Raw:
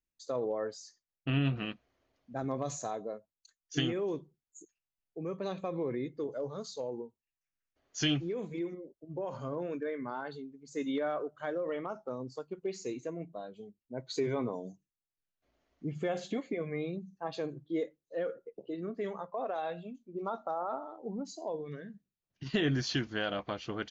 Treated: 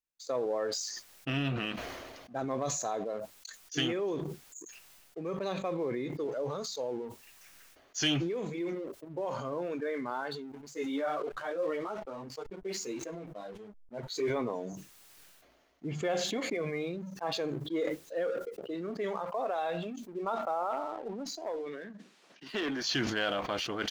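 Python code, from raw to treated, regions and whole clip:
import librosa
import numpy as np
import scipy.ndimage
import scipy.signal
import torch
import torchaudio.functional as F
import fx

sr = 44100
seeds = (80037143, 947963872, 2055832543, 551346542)

y = fx.chain(x, sr, fx.backlash(play_db=-54.0),
    fx.ensemble(), at=(10.52, 14.3))
y = fx.chain(y, sr, fx.highpass(hz=220.0, slope=24),
    fx.tube_stage(drive_db=29.0, bias=0.2),
    fx.air_absorb(metres=99.0), at=(20.71, 22.84))
y = fx.leveller(y, sr, passes=1)
y = fx.low_shelf(y, sr, hz=250.0, db=-10.5)
y = fx.sustainer(y, sr, db_per_s=30.0)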